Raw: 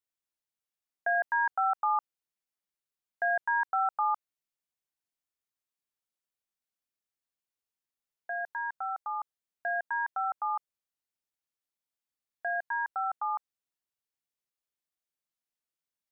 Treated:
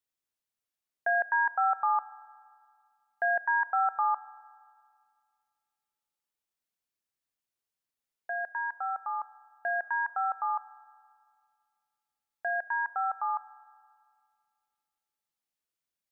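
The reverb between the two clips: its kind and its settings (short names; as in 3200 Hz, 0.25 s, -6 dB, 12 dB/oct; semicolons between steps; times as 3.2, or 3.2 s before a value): spring tank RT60 2.1 s, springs 32/36 ms, chirp 35 ms, DRR 17.5 dB; gain +1 dB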